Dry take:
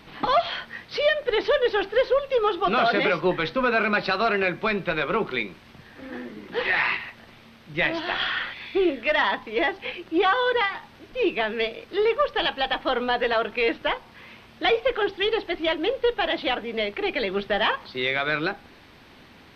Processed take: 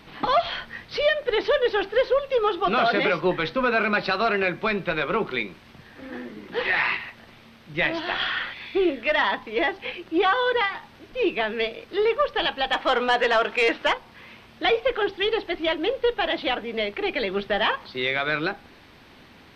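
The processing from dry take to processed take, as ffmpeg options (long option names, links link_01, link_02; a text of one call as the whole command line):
ffmpeg -i in.wav -filter_complex "[0:a]asettb=1/sr,asplit=3[link_01][link_02][link_03];[link_01]atrim=end=0.434[link_04];[link_02]atrim=start=0.43:end=1.04,asetpts=PTS-STARTPTS,afade=type=in:duration=0.004:curve=qsin,afade=type=out:start_time=0.606:duration=0.004:curve=qsin,lowshelf=frequency=76:gain=11[link_05];[link_03]atrim=start=1.036[link_06];[link_04][link_05]acrossfade=duration=0.004:curve1=hsin:curve2=qsin[link_07];[link_07][link_06]acrossfade=duration=0.004:curve1=qsin:curve2=hsin,asplit=3[link_08][link_09][link_10];[link_08]afade=type=out:start_time=12.72:duration=0.02[link_11];[link_09]asplit=2[link_12][link_13];[link_13]highpass=frequency=720:poles=1,volume=12dB,asoftclip=type=tanh:threshold=-10.5dB[link_14];[link_12][link_14]amix=inputs=2:normalize=0,lowpass=frequency=4100:poles=1,volume=-6dB,afade=type=in:start_time=12.72:duration=0.02,afade=type=out:start_time=13.92:duration=0.02[link_15];[link_10]afade=type=in:start_time=13.92:duration=0.02[link_16];[link_11][link_15][link_16]amix=inputs=3:normalize=0" out.wav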